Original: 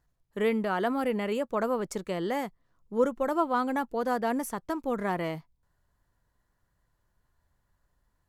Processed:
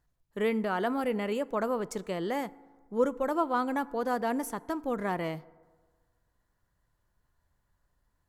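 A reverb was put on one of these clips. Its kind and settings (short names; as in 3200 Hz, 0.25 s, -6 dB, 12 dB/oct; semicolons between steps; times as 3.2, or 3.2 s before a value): FDN reverb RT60 1.5 s, low-frequency decay 0.95×, high-frequency decay 0.4×, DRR 19 dB; gain -1.5 dB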